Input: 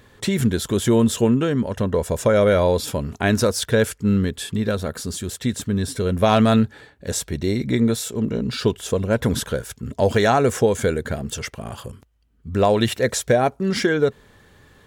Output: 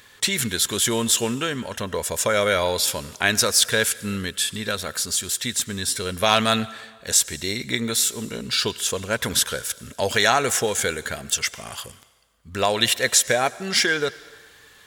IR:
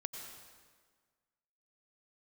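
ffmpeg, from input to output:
-filter_complex "[0:a]tiltshelf=frequency=970:gain=-9.5,asplit=2[link_01][link_02];[1:a]atrim=start_sample=2205,lowshelf=frequency=330:gain=-10[link_03];[link_02][link_03]afir=irnorm=-1:irlink=0,volume=-10.5dB[link_04];[link_01][link_04]amix=inputs=2:normalize=0,volume=-2dB"

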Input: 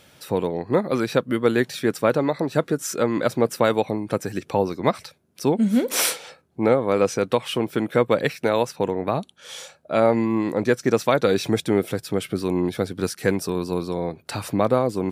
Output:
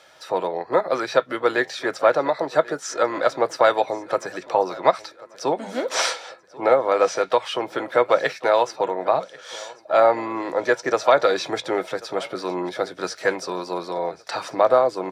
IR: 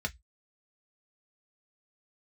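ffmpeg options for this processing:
-filter_complex "[0:a]asplit=2[link_01][link_02];[link_02]asetrate=55563,aresample=44100,atempo=0.793701,volume=-18dB[link_03];[link_01][link_03]amix=inputs=2:normalize=0,acrossover=split=8100[link_04][link_05];[link_05]acompressor=threshold=-48dB:ratio=4:attack=1:release=60[link_06];[link_04][link_06]amix=inputs=2:normalize=0,acrossover=split=460 6600:gain=0.0891 1 0.178[link_07][link_08][link_09];[link_07][link_08][link_09]amix=inputs=3:normalize=0,aecho=1:1:1089|2178|3267:0.0891|0.041|0.0189,asplit=2[link_10][link_11];[1:a]atrim=start_sample=2205,lowpass=6000[link_12];[link_11][link_12]afir=irnorm=-1:irlink=0,volume=-9.5dB[link_13];[link_10][link_13]amix=inputs=2:normalize=0,volume=3.5dB"

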